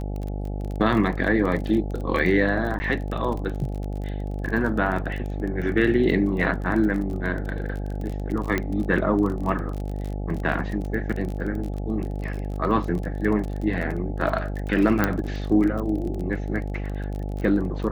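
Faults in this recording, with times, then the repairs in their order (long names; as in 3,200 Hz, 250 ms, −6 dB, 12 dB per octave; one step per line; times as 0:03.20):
mains buzz 50 Hz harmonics 17 −29 dBFS
surface crackle 29 per second −29 dBFS
0:02.79–0:02.80: drop-out 10 ms
0:08.58: click −11 dBFS
0:15.04: click −7 dBFS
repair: click removal
hum removal 50 Hz, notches 17
repair the gap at 0:02.79, 10 ms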